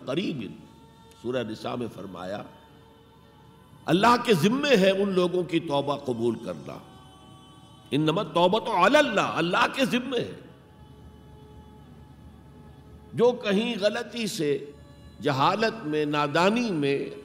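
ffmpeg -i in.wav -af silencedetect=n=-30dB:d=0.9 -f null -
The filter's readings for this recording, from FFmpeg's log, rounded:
silence_start: 2.42
silence_end: 3.87 | silence_duration: 1.45
silence_start: 6.77
silence_end: 7.92 | silence_duration: 1.15
silence_start: 10.33
silence_end: 13.16 | silence_duration: 2.83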